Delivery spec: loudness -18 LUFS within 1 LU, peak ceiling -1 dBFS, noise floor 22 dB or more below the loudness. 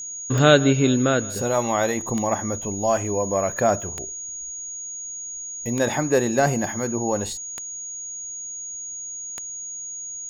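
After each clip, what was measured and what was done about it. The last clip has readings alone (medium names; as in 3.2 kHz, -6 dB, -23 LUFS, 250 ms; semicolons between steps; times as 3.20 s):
clicks found 6; steady tone 6.7 kHz; tone level -31 dBFS; loudness -23.5 LUFS; peak level -2.5 dBFS; loudness target -18.0 LUFS
-> de-click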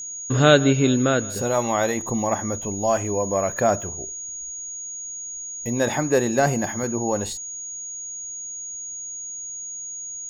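clicks found 0; steady tone 6.7 kHz; tone level -31 dBFS
-> band-stop 6.7 kHz, Q 30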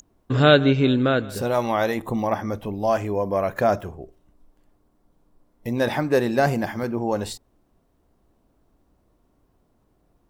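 steady tone not found; loudness -22.0 LUFS; peak level -2.5 dBFS; loudness target -18.0 LUFS
-> trim +4 dB; peak limiter -1 dBFS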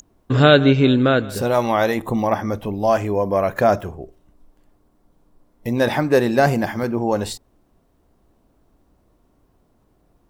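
loudness -18.5 LUFS; peak level -1.0 dBFS; noise floor -62 dBFS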